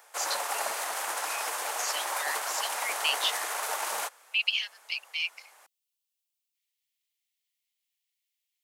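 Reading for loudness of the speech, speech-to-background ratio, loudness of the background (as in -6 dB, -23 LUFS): -32.0 LUFS, -0.5 dB, -31.5 LUFS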